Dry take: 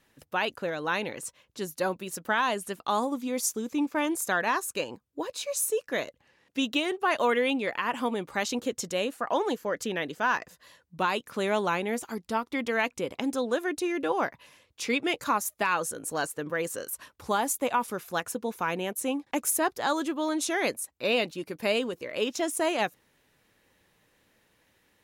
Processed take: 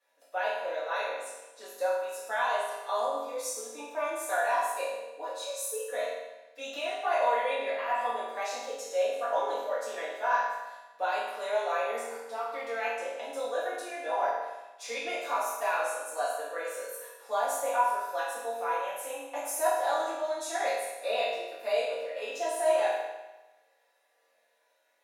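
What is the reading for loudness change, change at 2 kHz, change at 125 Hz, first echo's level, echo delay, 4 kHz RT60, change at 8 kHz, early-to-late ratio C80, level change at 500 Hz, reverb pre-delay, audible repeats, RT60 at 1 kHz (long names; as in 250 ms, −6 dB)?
−2.5 dB, −4.0 dB, below −30 dB, no echo audible, no echo audible, 1.0 s, −6.0 dB, 2.5 dB, 0.0 dB, 4 ms, no echo audible, 1.1 s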